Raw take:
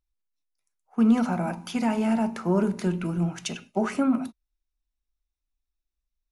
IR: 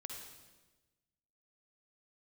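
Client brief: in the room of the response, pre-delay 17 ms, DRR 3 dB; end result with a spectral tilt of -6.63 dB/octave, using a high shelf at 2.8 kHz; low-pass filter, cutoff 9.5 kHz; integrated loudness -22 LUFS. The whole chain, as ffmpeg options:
-filter_complex "[0:a]lowpass=9500,highshelf=f=2800:g=-5.5,asplit=2[s0][s1];[1:a]atrim=start_sample=2205,adelay=17[s2];[s1][s2]afir=irnorm=-1:irlink=0,volume=1[s3];[s0][s3]amix=inputs=2:normalize=0,volume=1.19"

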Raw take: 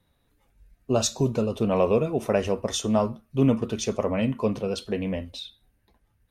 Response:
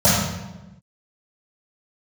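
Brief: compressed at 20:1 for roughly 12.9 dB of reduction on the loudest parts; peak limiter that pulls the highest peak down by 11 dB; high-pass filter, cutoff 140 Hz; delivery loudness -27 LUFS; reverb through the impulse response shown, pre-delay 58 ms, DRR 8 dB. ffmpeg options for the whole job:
-filter_complex "[0:a]highpass=140,acompressor=threshold=0.0355:ratio=20,alimiter=level_in=1.88:limit=0.0631:level=0:latency=1,volume=0.531,asplit=2[s0][s1];[1:a]atrim=start_sample=2205,adelay=58[s2];[s1][s2]afir=irnorm=-1:irlink=0,volume=0.0282[s3];[s0][s3]amix=inputs=2:normalize=0,volume=2.99"

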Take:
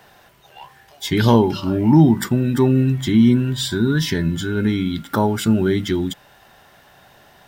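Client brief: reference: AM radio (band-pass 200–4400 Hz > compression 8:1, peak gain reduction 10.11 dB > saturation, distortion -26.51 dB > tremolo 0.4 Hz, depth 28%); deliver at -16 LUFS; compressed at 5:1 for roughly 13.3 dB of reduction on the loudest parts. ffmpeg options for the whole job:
-af "acompressor=threshold=0.0631:ratio=5,highpass=200,lowpass=4400,acompressor=threshold=0.0251:ratio=8,asoftclip=threshold=0.0708,tremolo=f=0.4:d=0.28,volume=13.3"

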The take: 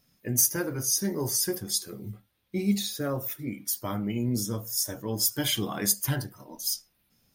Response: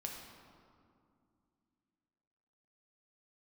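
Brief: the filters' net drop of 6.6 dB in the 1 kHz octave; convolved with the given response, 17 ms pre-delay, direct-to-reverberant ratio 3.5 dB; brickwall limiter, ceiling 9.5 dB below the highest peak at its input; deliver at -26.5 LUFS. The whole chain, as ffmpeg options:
-filter_complex "[0:a]equalizer=f=1000:t=o:g=-9,alimiter=limit=0.112:level=0:latency=1,asplit=2[s0][s1];[1:a]atrim=start_sample=2205,adelay=17[s2];[s1][s2]afir=irnorm=-1:irlink=0,volume=0.75[s3];[s0][s3]amix=inputs=2:normalize=0,volume=1.33"

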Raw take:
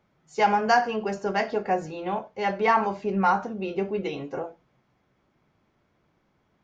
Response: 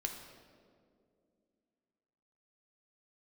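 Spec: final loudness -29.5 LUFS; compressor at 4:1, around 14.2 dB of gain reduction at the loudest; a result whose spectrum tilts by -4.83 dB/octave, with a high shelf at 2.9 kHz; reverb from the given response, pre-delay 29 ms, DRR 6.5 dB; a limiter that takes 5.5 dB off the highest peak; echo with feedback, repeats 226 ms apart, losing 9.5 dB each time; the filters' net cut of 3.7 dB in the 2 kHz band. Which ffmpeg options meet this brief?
-filter_complex "[0:a]equalizer=f=2000:t=o:g=-6.5,highshelf=f=2900:g=4.5,acompressor=threshold=0.02:ratio=4,alimiter=level_in=1.58:limit=0.0631:level=0:latency=1,volume=0.631,aecho=1:1:226|452|678|904:0.335|0.111|0.0365|0.012,asplit=2[s0][s1];[1:a]atrim=start_sample=2205,adelay=29[s2];[s1][s2]afir=irnorm=-1:irlink=0,volume=0.447[s3];[s0][s3]amix=inputs=2:normalize=0,volume=2.37"

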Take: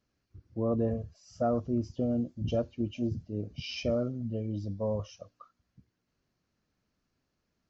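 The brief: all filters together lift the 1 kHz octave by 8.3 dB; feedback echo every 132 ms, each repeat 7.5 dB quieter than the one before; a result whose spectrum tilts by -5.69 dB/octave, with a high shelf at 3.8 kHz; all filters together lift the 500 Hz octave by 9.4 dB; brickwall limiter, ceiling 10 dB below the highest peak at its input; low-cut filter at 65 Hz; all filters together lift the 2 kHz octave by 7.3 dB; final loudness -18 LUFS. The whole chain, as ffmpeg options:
-af "highpass=65,equalizer=f=500:t=o:g=9,equalizer=f=1000:t=o:g=6,equalizer=f=2000:t=o:g=6.5,highshelf=f=3800:g=5.5,alimiter=limit=0.0841:level=0:latency=1,aecho=1:1:132|264|396|528|660:0.422|0.177|0.0744|0.0312|0.0131,volume=4.47"

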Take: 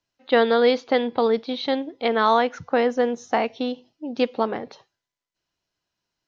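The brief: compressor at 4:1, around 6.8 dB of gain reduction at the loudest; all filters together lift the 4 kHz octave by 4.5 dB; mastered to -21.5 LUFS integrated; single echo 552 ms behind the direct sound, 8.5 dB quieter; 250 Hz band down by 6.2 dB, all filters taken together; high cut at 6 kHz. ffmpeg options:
-af "lowpass=6000,equalizer=f=250:t=o:g=-6.5,equalizer=f=4000:t=o:g=6,acompressor=threshold=0.0794:ratio=4,aecho=1:1:552:0.376,volume=2"

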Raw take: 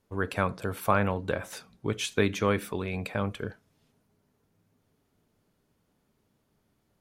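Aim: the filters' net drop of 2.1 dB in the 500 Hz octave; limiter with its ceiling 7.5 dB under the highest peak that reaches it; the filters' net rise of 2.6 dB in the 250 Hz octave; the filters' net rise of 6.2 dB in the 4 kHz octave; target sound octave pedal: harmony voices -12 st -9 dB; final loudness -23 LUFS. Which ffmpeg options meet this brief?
-filter_complex "[0:a]equalizer=f=250:t=o:g=4.5,equalizer=f=500:t=o:g=-4,equalizer=f=4000:t=o:g=8,alimiter=limit=0.158:level=0:latency=1,asplit=2[s0][s1];[s1]asetrate=22050,aresample=44100,atempo=2,volume=0.355[s2];[s0][s2]amix=inputs=2:normalize=0,volume=2.51"

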